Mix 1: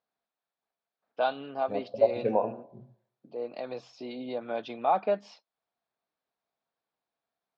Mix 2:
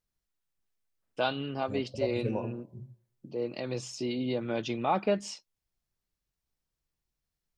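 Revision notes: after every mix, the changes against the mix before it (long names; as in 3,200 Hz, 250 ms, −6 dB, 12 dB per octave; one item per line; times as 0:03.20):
second voice −9.0 dB
master: remove loudspeaker in its box 320–3,800 Hz, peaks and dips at 350 Hz −7 dB, 710 Hz +7 dB, 2,000 Hz −6 dB, 2,900 Hz −8 dB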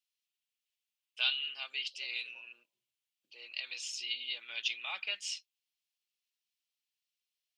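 second voice −7.0 dB
master: add high-pass with resonance 2,800 Hz, resonance Q 2.9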